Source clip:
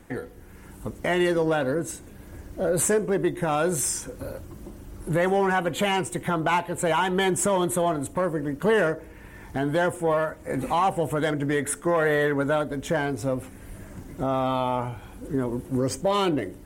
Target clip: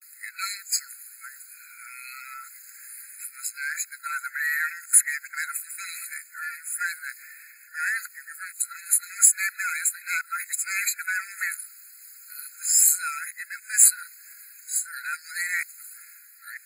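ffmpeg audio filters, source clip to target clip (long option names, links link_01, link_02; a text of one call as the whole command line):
ffmpeg -i in.wav -af "areverse,crystalizer=i=6:c=0,afftfilt=real='re*eq(mod(floor(b*sr/1024/1300),2),1)':imag='im*eq(mod(floor(b*sr/1024/1300),2),1)':win_size=1024:overlap=0.75,volume=-3dB" out.wav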